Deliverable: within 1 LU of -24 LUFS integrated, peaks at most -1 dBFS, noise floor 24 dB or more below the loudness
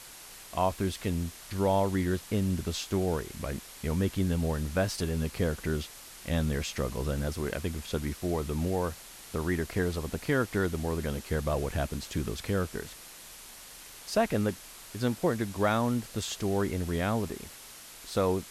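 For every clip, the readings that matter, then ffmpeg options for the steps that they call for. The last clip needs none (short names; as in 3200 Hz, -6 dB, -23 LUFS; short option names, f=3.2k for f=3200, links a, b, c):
noise floor -48 dBFS; noise floor target -55 dBFS; loudness -31.0 LUFS; peak -13.5 dBFS; loudness target -24.0 LUFS
-> -af "afftdn=nr=7:nf=-48"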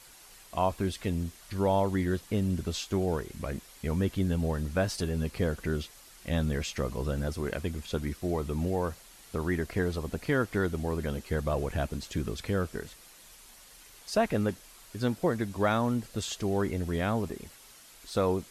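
noise floor -54 dBFS; noise floor target -56 dBFS
-> -af "afftdn=nr=6:nf=-54"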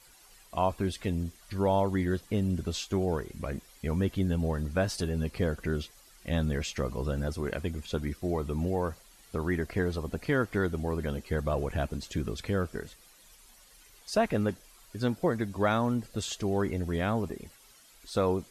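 noise floor -57 dBFS; loudness -31.5 LUFS; peak -13.5 dBFS; loudness target -24.0 LUFS
-> -af "volume=7.5dB"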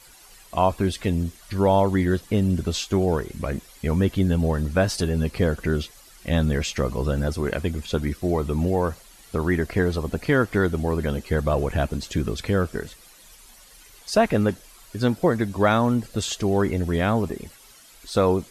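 loudness -24.0 LUFS; peak -6.0 dBFS; noise floor -50 dBFS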